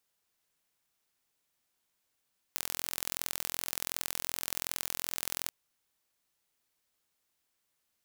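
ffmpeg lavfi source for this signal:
ffmpeg -f lavfi -i "aevalsrc='0.562*eq(mod(n,1033),0)*(0.5+0.5*eq(mod(n,2066),0))':duration=2.93:sample_rate=44100" out.wav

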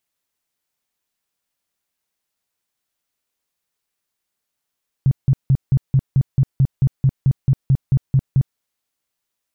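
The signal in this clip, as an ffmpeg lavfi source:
ffmpeg -f lavfi -i "aevalsrc='0.316*sin(2*PI*134*mod(t,0.22))*lt(mod(t,0.22),7/134)':duration=3.52:sample_rate=44100" out.wav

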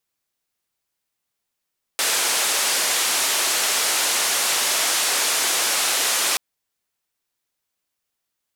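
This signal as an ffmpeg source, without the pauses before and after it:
ffmpeg -f lavfi -i "anoisesrc=color=white:duration=4.38:sample_rate=44100:seed=1,highpass=frequency=430,lowpass=frequency=10000,volume=-12.6dB" out.wav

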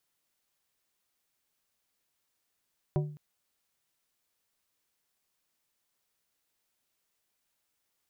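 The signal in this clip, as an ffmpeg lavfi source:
ffmpeg -f lavfi -i "aevalsrc='0.0708*pow(10,-3*t/0.52)*sin(2*PI*149*t)+0.0398*pow(10,-3*t/0.274)*sin(2*PI*372.5*t)+0.0224*pow(10,-3*t/0.197)*sin(2*PI*596*t)+0.0126*pow(10,-3*t/0.169)*sin(2*PI*745*t)+0.00708*pow(10,-3*t/0.14)*sin(2*PI*968.5*t)':duration=0.21:sample_rate=44100" out.wav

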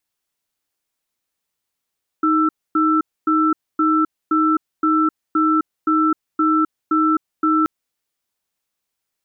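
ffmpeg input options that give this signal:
ffmpeg -f lavfi -i "aevalsrc='0.158*(sin(2*PI*313*t)+sin(2*PI*1330*t))*clip(min(mod(t,0.52),0.26-mod(t,0.52))/0.005,0,1)':duration=5.43:sample_rate=44100" out.wav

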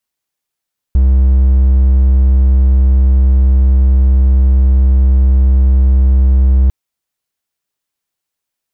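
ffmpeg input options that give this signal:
ffmpeg -f lavfi -i "aevalsrc='0.668*(1-4*abs(mod(65.4*t+0.25,1)-0.5))':duration=5.75:sample_rate=44100" out.wav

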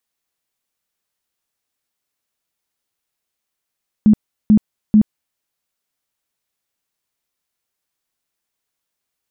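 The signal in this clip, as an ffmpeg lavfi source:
ffmpeg -f lavfi -i "aevalsrc='0.501*sin(2*PI*213*mod(t,0.44))*lt(mod(t,0.44),16/213)':duration=1.32:sample_rate=44100" out.wav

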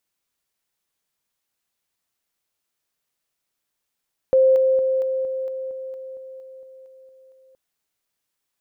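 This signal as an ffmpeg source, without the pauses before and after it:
ffmpeg -f lavfi -i "aevalsrc='pow(10,(-11.5-3*floor(t/0.23))/20)*sin(2*PI*525*t)':duration=3.22:sample_rate=44100" out.wav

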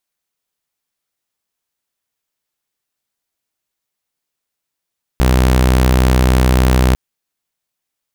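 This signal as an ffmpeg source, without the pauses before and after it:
ffmpeg -f lavfi -i "aevalsrc='0.473*(2*mod(63.4*t,1)-1)':duration=1.75:sample_rate=44100" out.wav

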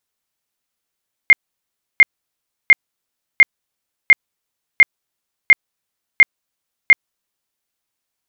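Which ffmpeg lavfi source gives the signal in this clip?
ffmpeg -f lavfi -i "aevalsrc='0.708*sin(2*PI*2120*mod(t,0.7))*lt(mod(t,0.7),62/2120)':duration=6.3:sample_rate=44100" out.wav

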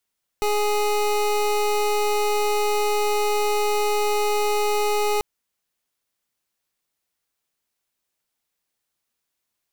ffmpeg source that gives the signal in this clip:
ffmpeg -f lavfi -i "aevalsrc='0.0891*(2*lt(mod(417*t,1),0.25)-1)':duration=4.79:sample_rate=44100" out.wav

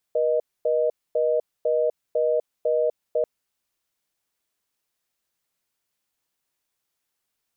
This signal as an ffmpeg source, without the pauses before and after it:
ffmpeg -f lavfi -i "aevalsrc='0.0841*(sin(2*PI*480*t)+sin(2*PI*620*t))*clip(min(mod(t,0.5),0.25-mod(t,0.5))/0.005,0,1)':duration=3.09:sample_rate=44100" out.wav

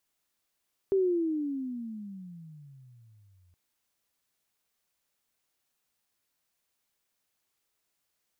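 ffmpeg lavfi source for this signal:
ffmpeg -f lavfi -i "aevalsrc='pow(10,(-21-39.5*t/2.62)/20)*sin(2*PI*395*2.62/(-26.5*log(2)/12)*(exp(-26.5*log(2)/12*t/2.62)-1))':duration=2.62:sample_rate=44100" out.wav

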